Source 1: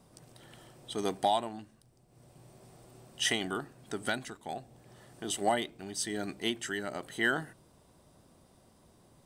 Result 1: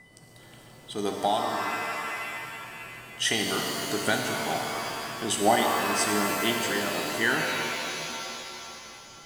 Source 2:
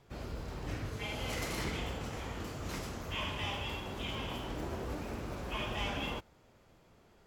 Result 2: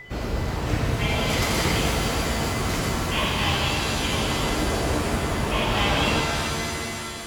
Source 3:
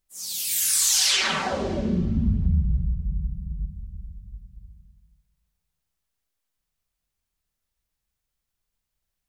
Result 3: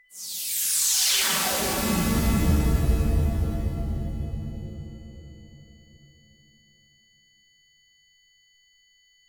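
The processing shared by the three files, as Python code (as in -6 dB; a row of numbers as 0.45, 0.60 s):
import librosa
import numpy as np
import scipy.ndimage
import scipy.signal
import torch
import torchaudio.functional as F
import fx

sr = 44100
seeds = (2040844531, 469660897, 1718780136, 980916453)

y = x + 10.0 ** (-51.0 / 20.0) * np.sin(2.0 * np.pi * 2000.0 * np.arange(len(x)) / sr)
y = fx.rider(y, sr, range_db=3, speed_s=2.0)
y = fx.rev_shimmer(y, sr, seeds[0], rt60_s=2.9, semitones=7, shimmer_db=-2, drr_db=2.0)
y = librosa.util.normalize(y) * 10.0 ** (-9 / 20.0)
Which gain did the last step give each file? +4.0, +11.0, -4.0 dB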